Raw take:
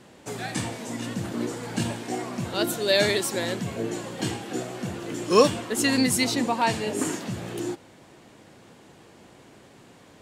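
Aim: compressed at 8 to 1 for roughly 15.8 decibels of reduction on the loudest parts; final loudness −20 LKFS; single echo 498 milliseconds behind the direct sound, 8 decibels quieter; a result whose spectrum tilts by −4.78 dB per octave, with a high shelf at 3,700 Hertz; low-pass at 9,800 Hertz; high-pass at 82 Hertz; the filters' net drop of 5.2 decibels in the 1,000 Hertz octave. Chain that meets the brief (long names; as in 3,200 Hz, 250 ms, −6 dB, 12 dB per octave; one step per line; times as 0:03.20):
high-pass filter 82 Hz
low-pass filter 9,800 Hz
parametric band 1,000 Hz −6 dB
high-shelf EQ 3,700 Hz −5.5 dB
downward compressor 8 to 1, threshold −30 dBFS
single-tap delay 498 ms −8 dB
level +14.5 dB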